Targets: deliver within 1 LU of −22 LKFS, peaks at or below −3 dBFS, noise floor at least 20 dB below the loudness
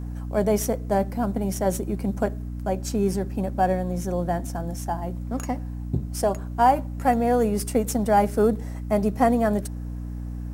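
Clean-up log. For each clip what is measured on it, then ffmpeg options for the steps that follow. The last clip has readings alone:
mains hum 60 Hz; hum harmonics up to 300 Hz; level of the hum −30 dBFS; integrated loudness −25.0 LKFS; sample peak −7.5 dBFS; target loudness −22.0 LKFS
→ -af "bandreject=frequency=60:width_type=h:width=4,bandreject=frequency=120:width_type=h:width=4,bandreject=frequency=180:width_type=h:width=4,bandreject=frequency=240:width_type=h:width=4,bandreject=frequency=300:width_type=h:width=4"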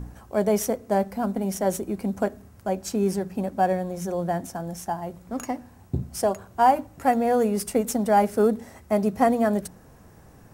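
mains hum none found; integrated loudness −25.0 LKFS; sample peak −7.0 dBFS; target loudness −22.0 LKFS
→ -af "volume=3dB"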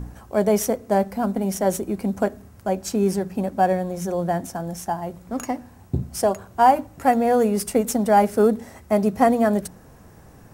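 integrated loudness −22.0 LKFS; sample peak −4.0 dBFS; background noise floor −48 dBFS

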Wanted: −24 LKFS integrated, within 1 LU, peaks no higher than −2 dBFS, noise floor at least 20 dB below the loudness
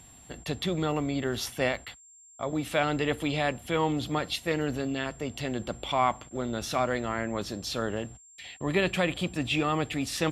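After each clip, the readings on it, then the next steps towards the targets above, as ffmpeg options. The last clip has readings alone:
interfering tone 7,400 Hz; level of the tone −52 dBFS; integrated loudness −30.0 LKFS; sample peak −11.0 dBFS; target loudness −24.0 LKFS
→ -af "bandreject=frequency=7400:width=30"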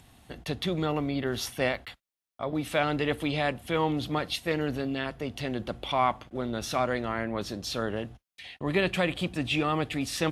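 interfering tone none found; integrated loudness −30.0 LKFS; sample peak −11.0 dBFS; target loudness −24.0 LKFS
→ -af "volume=6dB"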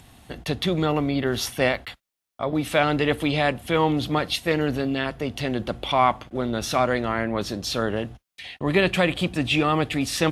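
integrated loudness −24.0 LKFS; sample peak −5.0 dBFS; background noise floor −84 dBFS

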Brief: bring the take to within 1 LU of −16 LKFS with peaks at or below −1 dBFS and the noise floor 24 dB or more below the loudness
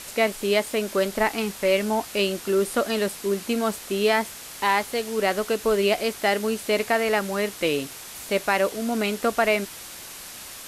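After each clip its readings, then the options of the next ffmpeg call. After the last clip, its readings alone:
background noise floor −40 dBFS; target noise floor −48 dBFS; integrated loudness −24.0 LKFS; sample peak −7.5 dBFS; target loudness −16.0 LKFS
→ -af "afftdn=noise_reduction=8:noise_floor=-40"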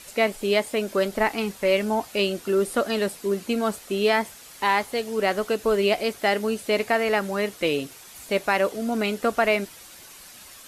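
background noise floor −46 dBFS; target noise floor −48 dBFS
→ -af "afftdn=noise_reduction=6:noise_floor=-46"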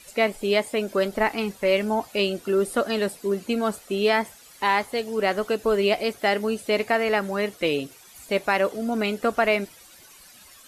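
background noise floor −50 dBFS; integrated loudness −24.5 LKFS; sample peak −8.0 dBFS; target loudness −16.0 LKFS
→ -af "volume=8.5dB,alimiter=limit=-1dB:level=0:latency=1"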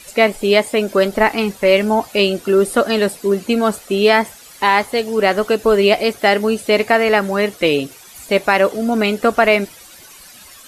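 integrated loudness −16.0 LKFS; sample peak −1.0 dBFS; background noise floor −41 dBFS

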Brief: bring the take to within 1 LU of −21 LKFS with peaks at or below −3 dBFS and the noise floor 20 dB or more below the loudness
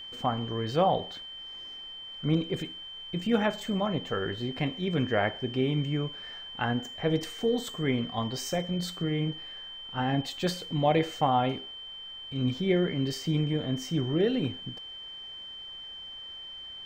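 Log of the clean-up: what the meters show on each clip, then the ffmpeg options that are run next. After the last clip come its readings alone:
interfering tone 3,100 Hz; level of the tone −40 dBFS; integrated loudness −30.5 LKFS; sample peak −12.5 dBFS; target loudness −21.0 LKFS
→ -af "bandreject=frequency=3100:width=30"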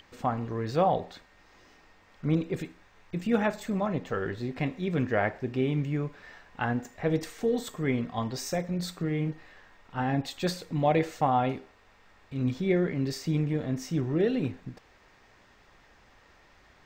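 interfering tone none found; integrated loudness −30.0 LKFS; sample peak −13.0 dBFS; target loudness −21.0 LKFS
→ -af "volume=9dB"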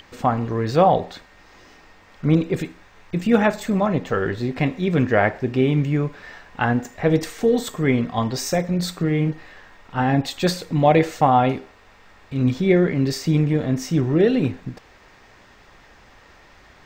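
integrated loudness −21.0 LKFS; sample peak −4.0 dBFS; background noise floor −51 dBFS

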